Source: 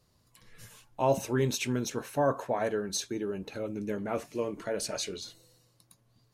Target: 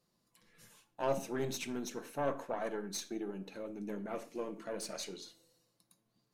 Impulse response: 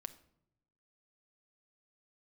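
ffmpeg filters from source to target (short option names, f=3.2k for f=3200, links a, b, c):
-filter_complex "[0:a]aeval=exprs='0.188*(cos(1*acos(clip(val(0)/0.188,-1,1)))-cos(1*PI/2))+0.0299*(cos(4*acos(clip(val(0)/0.188,-1,1)))-cos(4*PI/2))':c=same,lowshelf=f=140:t=q:w=1.5:g=-9.5[a];[1:a]atrim=start_sample=2205,afade=t=out:st=0.19:d=0.01,atrim=end_sample=8820[b];[a][b]afir=irnorm=-1:irlink=0,volume=-4dB"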